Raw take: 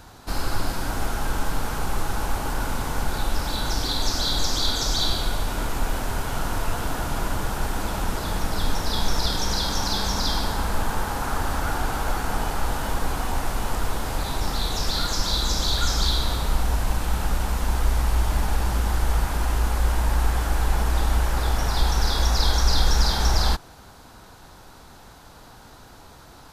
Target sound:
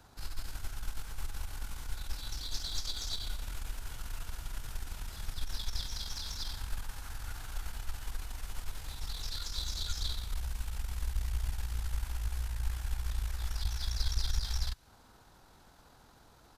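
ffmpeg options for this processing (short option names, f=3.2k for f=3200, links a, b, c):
-filter_complex "[0:a]acrossover=split=110|1700[a][b][c];[b]acompressor=threshold=-43dB:ratio=8[d];[a][d][c]amix=inputs=3:normalize=0,atempo=1.6,aeval=exprs='(tanh(4.47*val(0)+0.7)-tanh(0.7))/4.47':c=same,volume=-8.5dB"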